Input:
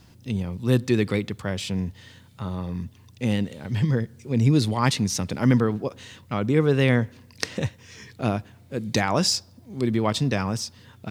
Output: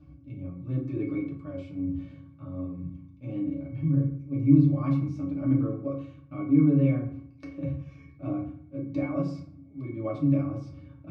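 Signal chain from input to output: reverse; upward compressor, threshold -23 dBFS; reverse; treble shelf 7.7 kHz -3.5 dB; hum notches 50/100/150 Hz; pitch-class resonator C#, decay 0.12 s; FDN reverb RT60 0.6 s, low-frequency decay 1.25×, high-frequency decay 0.55×, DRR -3 dB; dynamic bell 460 Hz, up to +4 dB, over -35 dBFS, Q 0.94; trim -4.5 dB

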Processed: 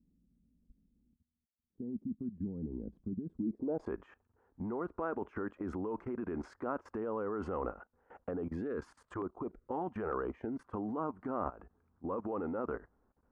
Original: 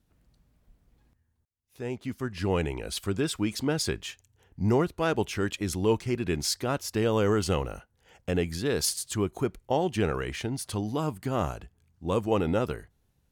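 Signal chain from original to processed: graphic EQ 125/250/500/1000/4000/8000 Hz -11/+9/+5/+4/-11/+4 dB; 8.31–10.69 s: LFO notch saw down 1.1 Hz 200–2900 Hz; peak limiter -22.5 dBFS, peak gain reduction 15 dB; level held to a coarse grid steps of 18 dB; low-pass sweep 200 Hz -> 1.3 kHz, 3.37–3.95 s; trim -1.5 dB

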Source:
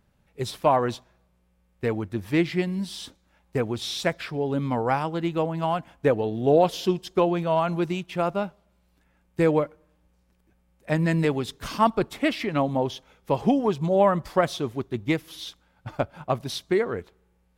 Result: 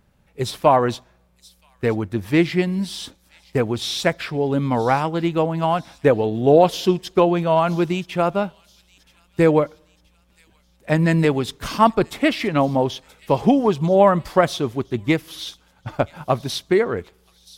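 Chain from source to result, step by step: feedback echo behind a high-pass 976 ms, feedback 45%, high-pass 4.4 kHz, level -15 dB; trim +5.5 dB

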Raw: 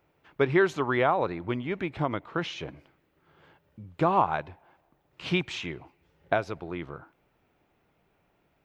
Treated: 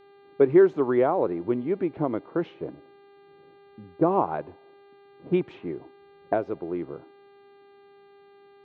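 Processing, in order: band-pass filter 360 Hz, Q 1.3; level-controlled noise filter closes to 340 Hz, open at -29 dBFS; mains buzz 400 Hz, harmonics 11, -61 dBFS -8 dB/octave; trim +7 dB

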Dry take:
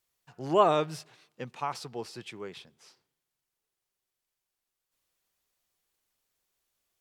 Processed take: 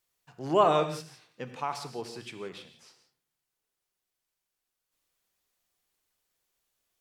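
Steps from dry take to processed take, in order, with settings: hum notches 60/120 Hz; gated-style reverb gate 200 ms flat, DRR 8 dB

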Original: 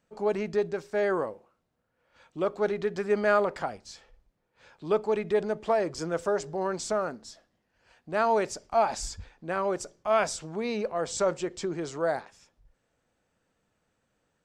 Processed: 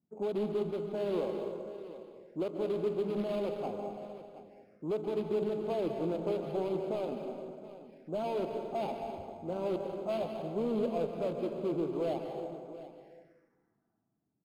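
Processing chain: median filter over 41 samples; high-pass 180 Hz 12 dB/octave; in parallel at -10 dB: integer overflow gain 28 dB; on the sum: level-controlled noise filter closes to 550 Hz, open at -23.5 dBFS; peak limiter -24 dBFS, peak gain reduction 9 dB; on a send: delay 724 ms -15 dB; on the sum: plate-style reverb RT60 2 s, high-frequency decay 0.6×, pre-delay 120 ms, DRR 4 dB; touch-sensitive phaser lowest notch 500 Hz, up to 1.8 kHz, full sweep at -44.5 dBFS; decimation joined by straight lines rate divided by 6×

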